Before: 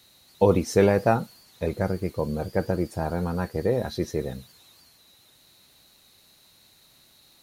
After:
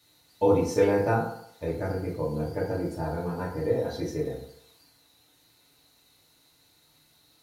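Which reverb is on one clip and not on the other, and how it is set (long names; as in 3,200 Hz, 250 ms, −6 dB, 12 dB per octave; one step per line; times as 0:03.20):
feedback delay network reverb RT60 0.69 s, low-frequency decay 0.8×, high-frequency decay 0.55×, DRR −5.5 dB
level −10 dB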